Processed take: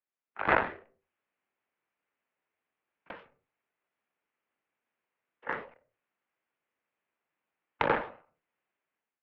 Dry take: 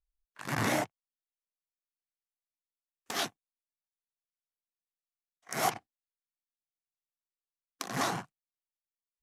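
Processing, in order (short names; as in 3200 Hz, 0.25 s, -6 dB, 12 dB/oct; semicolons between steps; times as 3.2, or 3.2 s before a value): compressor, threshold -30 dBFS, peak gain reduction 7.5 dB; mistuned SSB -220 Hz 420–2800 Hz; AGC gain up to 13 dB; added harmonics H 2 -16 dB, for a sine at -10.5 dBFS; reverb RT60 0.20 s, pre-delay 8 ms, DRR 17 dB; ending taper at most 130 dB/s; gain +4.5 dB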